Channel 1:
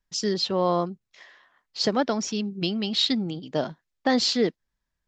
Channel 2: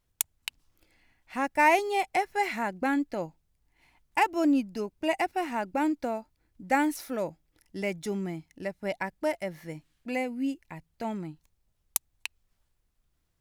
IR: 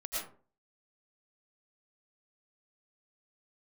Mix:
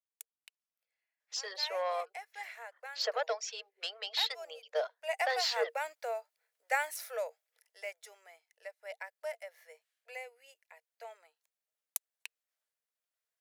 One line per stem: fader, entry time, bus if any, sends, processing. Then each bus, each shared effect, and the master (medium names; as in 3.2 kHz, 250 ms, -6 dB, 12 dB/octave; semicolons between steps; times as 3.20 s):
-2.0 dB, 1.20 s, no send, reverb removal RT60 0.51 s; saturation -16 dBFS, distortion -17 dB
1.67 s -22 dB -> 2.31 s -13.5 dB -> 4.91 s -13.5 dB -> 5.23 s -2 dB -> 7.37 s -2 dB -> 8.03 s -9.5 dB, 0.00 s, no send, treble shelf 4.4 kHz +8 dB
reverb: none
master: rippled Chebyshev high-pass 450 Hz, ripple 6 dB